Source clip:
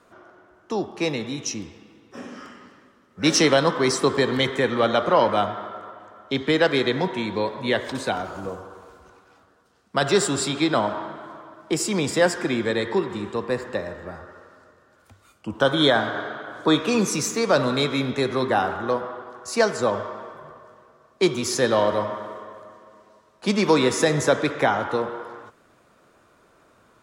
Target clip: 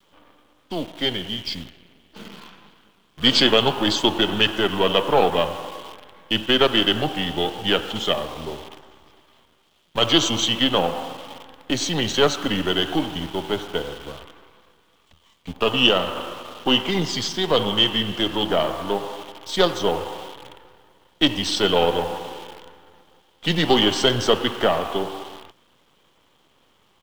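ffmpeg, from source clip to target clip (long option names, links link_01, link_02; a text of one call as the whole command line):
ffmpeg -i in.wav -af "aeval=exprs='if(lt(val(0),0),0.447*val(0),val(0))':channel_layout=same,aresample=22050,aresample=44100,asetrate=36028,aresample=44100,atempo=1.22405,adynamicequalizer=threshold=0.0141:dfrequency=660:dqfactor=1.2:tfrequency=660:tqfactor=1.2:attack=5:release=100:ratio=0.375:range=2:mode=boostabove:tftype=bell,acrusher=bits=8:dc=4:mix=0:aa=0.000001,equalizer=frequency=3200:width_type=o:width=0.47:gain=15,dynaudnorm=framelen=440:gausssize=11:maxgain=11.5dB,volume=-1dB" out.wav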